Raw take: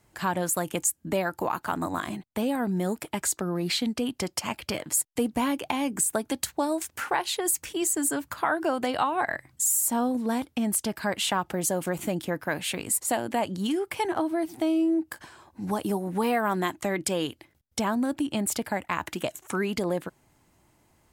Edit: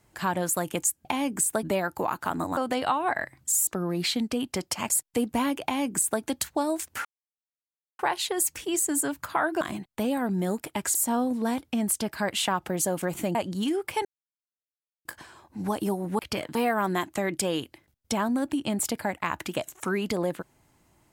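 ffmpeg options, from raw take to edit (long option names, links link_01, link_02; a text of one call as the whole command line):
ffmpeg -i in.wav -filter_complex "[0:a]asplit=14[link_01][link_02][link_03][link_04][link_05][link_06][link_07][link_08][link_09][link_10][link_11][link_12][link_13][link_14];[link_01]atrim=end=1.052[link_15];[link_02]atrim=start=5.648:end=6.232[link_16];[link_03]atrim=start=1.048:end=1.992[link_17];[link_04]atrim=start=8.688:end=9.792[link_18];[link_05]atrim=start=3.328:end=4.562[link_19];[link_06]atrim=start=4.918:end=7.07,asetpts=PTS-STARTPTS,afade=type=out:start_time=2.148:duration=0.004:curve=hsin,apad=pad_dur=0.94[link_20];[link_07]atrim=start=7.07:end=8.692,asetpts=PTS-STARTPTS,afade=type=in:duration=0.004:curve=hsin[link_21];[link_08]atrim=start=1.988:end=3.332[link_22];[link_09]atrim=start=9.788:end=12.192[link_23];[link_10]atrim=start=13.378:end=14.08,asetpts=PTS-STARTPTS,afade=type=out:start_time=0.698:duration=0.004:curve=hsin[link_24];[link_11]atrim=start=14.08:end=15.08,asetpts=PTS-STARTPTS,volume=0[link_25];[link_12]atrim=start=15.08:end=16.222,asetpts=PTS-STARTPTS,afade=type=in:duration=0.004:curve=hsin[link_26];[link_13]atrim=start=4.558:end=4.922[link_27];[link_14]atrim=start=16.218[link_28];[link_15][link_16]acrossfade=duration=0.004:curve1=hsin:curve2=hsin[link_29];[link_29][link_17]acrossfade=duration=0.004:curve1=hsin:curve2=hsin[link_30];[link_30][link_18]acrossfade=duration=0.004:curve1=hsin:curve2=hsin[link_31];[link_31][link_19]acrossfade=duration=0.004:curve1=hsin:curve2=hsin[link_32];[link_20][link_21]concat=n=2:v=0:a=1[link_33];[link_32][link_33]acrossfade=duration=0.004:curve1=hsin:curve2=hsin[link_34];[link_34][link_22]acrossfade=duration=0.004:curve1=hsin:curve2=hsin[link_35];[link_35][link_23]acrossfade=duration=0.004:curve1=hsin:curve2=hsin[link_36];[link_24][link_25][link_26]concat=n=3:v=0:a=1[link_37];[link_36][link_37]acrossfade=duration=0.004:curve1=hsin:curve2=hsin[link_38];[link_38][link_27]acrossfade=duration=0.004:curve1=hsin:curve2=hsin[link_39];[link_39][link_28]acrossfade=duration=0.004:curve1=hsin:curve2=hsin" out.wav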